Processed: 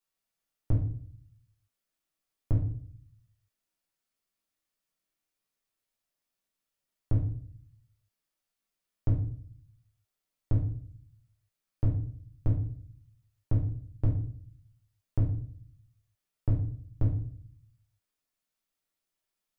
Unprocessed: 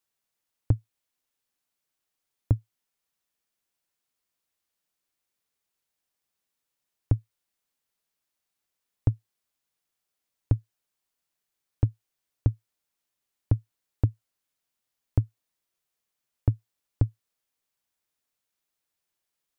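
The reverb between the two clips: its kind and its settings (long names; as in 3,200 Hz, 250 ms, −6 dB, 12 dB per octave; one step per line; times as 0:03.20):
rectangular room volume 60 cubic metres, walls mixed, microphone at 1.1 metres
level −8 dB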